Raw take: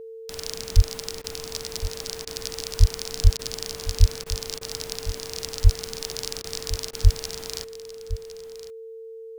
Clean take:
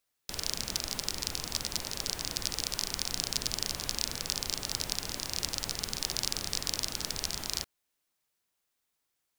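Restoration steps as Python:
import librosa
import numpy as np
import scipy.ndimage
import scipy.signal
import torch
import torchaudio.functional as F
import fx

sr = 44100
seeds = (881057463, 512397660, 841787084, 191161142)

y = fx.notch(x, sr, hz=450.0, q=30.0)
y = fx.fix_deplosive(y, sr, at_s=(0.75, 2.79, 3.23, 3.99, 5.63, 7.03))
y = fx.fix_interpolate(y, sr, at_s=(1.22, 2.25, 3.37, 4.24, 4.59, 6.42, 6.91), length_ms=20.0)
y = fx.fix_echo_inverse(y, sr, delay_ms=1060, level_db=-14.0)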